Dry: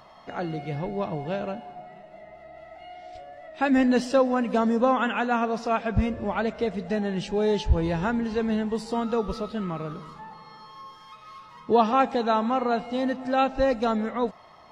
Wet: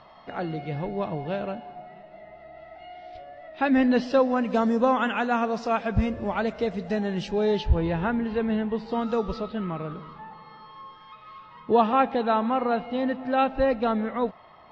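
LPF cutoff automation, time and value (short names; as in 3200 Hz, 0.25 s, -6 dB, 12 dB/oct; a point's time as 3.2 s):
LPF 24 dB/oct
4.02 s 4600 Hz
4.58 s 7000 Hz
7.17 s 7000 Hz
7.94 s 3500 Hz
8.85 s 3500 Hz
9.13 s 6900 Hz
9.56 s 3700 Hz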